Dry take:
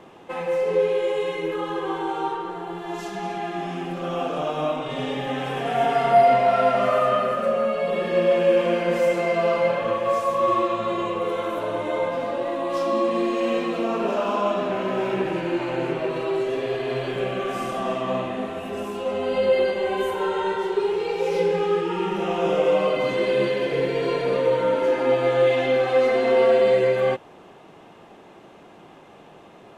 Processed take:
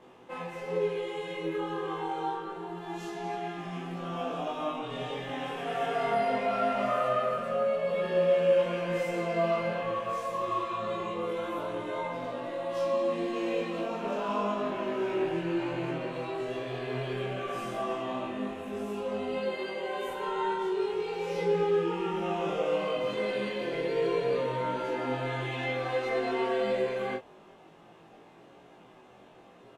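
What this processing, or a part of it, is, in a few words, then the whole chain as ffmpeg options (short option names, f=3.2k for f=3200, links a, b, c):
double-tracked vocal: -filter_complex "[0:a]asettb=1/sr,asplit=3[a][b][c];[a]atrim=end=19.364[d];[b]atrim=start=19.36:end=20.08,asetpts=PTS-STARTPTS,afade=t=in:d=0.004:c=qsin,afade=t=out:st=0.716:d=0.004:c=qsin,highpass=f=200:p=1[e];[c]atrim=start=20.076[f];[d][e]acrossfade=d=0.004:c1=hsin:c2=qsin[g];[g][f]acrossfade=d=0.004:c1=qsin:c2=hsin,asplit=2[h][i];[i]adelay=24,volume=-2.5dB[j];[h][j]amix=inputs=2:normalize=0,flanger=delay=16:depth=3.2:speed=0.24,volume=-6dB"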